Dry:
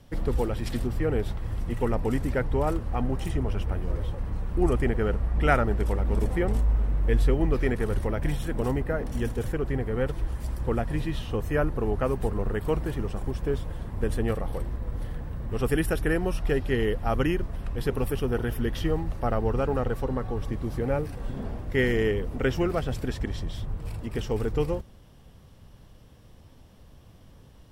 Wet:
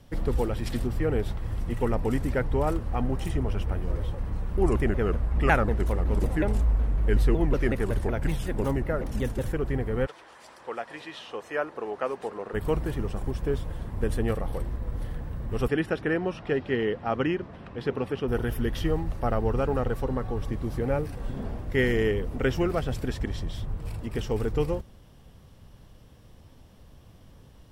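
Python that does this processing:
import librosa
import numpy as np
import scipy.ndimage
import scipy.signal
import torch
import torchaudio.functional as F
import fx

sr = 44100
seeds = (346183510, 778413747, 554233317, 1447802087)

y = fx.vibrato_shape(x, sr, shape='saw_down', rate_hz=5.4, depth_cents=250.0, at=(4.57, 9.43))
y = fx.bandpass_edges(y, sr, low_hz=fx.line((10.05, 780.0), (12.53, 400.0)), high_hz=6800.0, at=(10.05, 12.53), fade=0.02)
y = fx.bandpass_edges(y, sr, low_hz=150.0, high_hz=3900.0, at=(15.67, 18.27), fade=0.02)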